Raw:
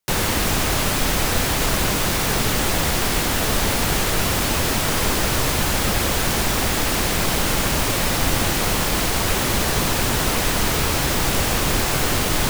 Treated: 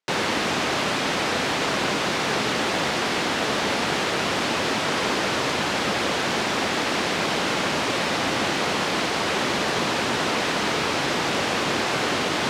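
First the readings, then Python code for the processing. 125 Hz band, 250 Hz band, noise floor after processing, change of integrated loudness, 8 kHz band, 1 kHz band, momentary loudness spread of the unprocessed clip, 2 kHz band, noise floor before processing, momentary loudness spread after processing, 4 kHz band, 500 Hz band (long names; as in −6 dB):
−10.5 dB, −2.5 dB, −25 dBFS, −3.5 dB, −9.5 dB, 0.0 dB, 0 LU, 0.0 dB, −21 dBFS, 0 LU, −2.0 dB, 0.0 dB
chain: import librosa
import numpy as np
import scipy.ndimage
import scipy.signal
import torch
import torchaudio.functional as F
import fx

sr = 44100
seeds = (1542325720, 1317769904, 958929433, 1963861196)

y = fx.bandpass_edges(x, sr, low_hz=220.0, high_hz=4600.0)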